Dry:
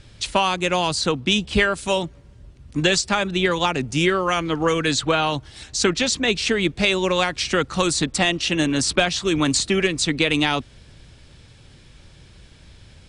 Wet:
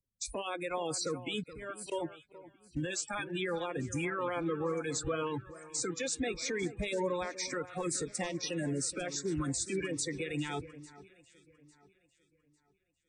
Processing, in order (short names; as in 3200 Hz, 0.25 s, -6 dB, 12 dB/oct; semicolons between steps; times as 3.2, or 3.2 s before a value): bin magnitudes rounded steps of 30 dB; spectral noise reduction 27 dB; graphic EQ 500/4000/8000 Hz +9/-9/+5 dB; compressor, threshold -23 dBFS, peak gain reduction 12 dB; 1.43–1.92 auto swell 0.293 s; limiter -21.5 dBFS, peak gain reduction 10.5 dB; on a send: echo with dull and thin repeats by turns 0.425 s, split 1900 Hz, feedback 66%, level -12.5 dB; on the sum: three-band expander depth 40%; gain -5 dB